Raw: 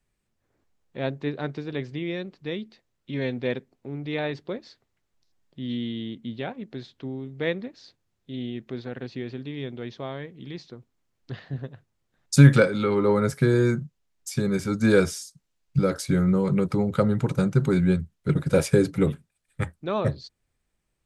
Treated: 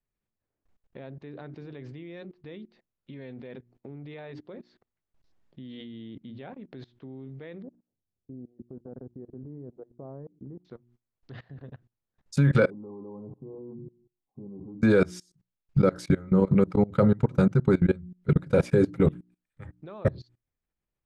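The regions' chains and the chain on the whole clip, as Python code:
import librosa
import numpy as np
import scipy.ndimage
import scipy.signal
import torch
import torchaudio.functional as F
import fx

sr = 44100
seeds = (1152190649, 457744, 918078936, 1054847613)

y = fx.chain(x, sr, fx.gaussian_blur(sigma=9.8),
    fx.level_steps(step_db=21), at=(7.62, 10.65))
y = fx.chain(y, sr, fx.cheby_ripple(hz=1100.0, ripple_db=9),
    fx.echo_feedback(ms=64, feedback_pct=55, wet_db=-23), at=(12.7, 14.82))
y = fx.lowpass(y, sr, hz=2000.0, slope=6)
y = fx.hum_notches(y, sr, base_hz=60, count=6)
y = fx.level_steps(y, sr, step_db=23)
y = y * 10.0 ** (4.5 / 20.0)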